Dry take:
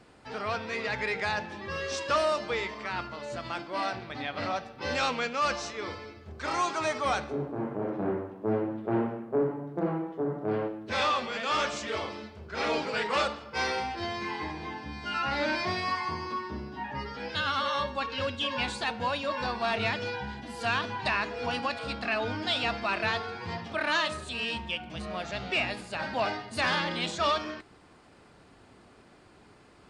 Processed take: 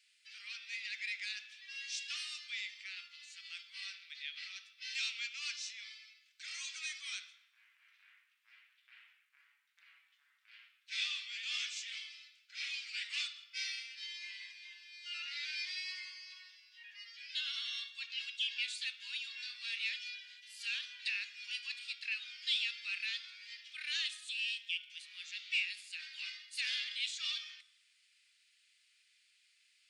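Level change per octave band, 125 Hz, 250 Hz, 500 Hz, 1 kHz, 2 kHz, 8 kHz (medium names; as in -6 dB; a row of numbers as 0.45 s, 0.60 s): under -40 dB, under -40 dB, under -40 dB, -35.0 dB, -8.5 dB, -3.5 dB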